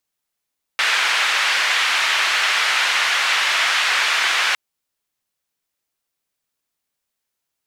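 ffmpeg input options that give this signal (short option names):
-f lavfi -i "anoisesrc=c=white:d=3.76:r=44100:seed=1,highpass=f=1500,lowpass=f=2300,volume=-0.5dB"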